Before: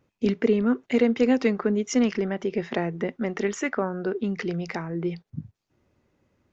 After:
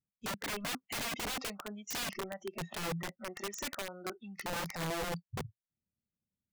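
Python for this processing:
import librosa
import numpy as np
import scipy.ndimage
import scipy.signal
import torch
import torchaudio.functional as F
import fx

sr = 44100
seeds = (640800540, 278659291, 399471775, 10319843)

y = fx.noise_reduce_blind(x, sr, reduce_db=25)
y = fx.curve_eq(y, sr, hz=(120.0, 200.0, 320.0, 690.0, 1100.0, 2700.0, 4200.0), db=(0, 6, -10, -9, -13, -7, -6))
y = (np.mod(10.0 ** (32.0 / 20.0) * y + 1.0, 2.0) - 1.0) / 10.0 ** (32.0 / 20.0)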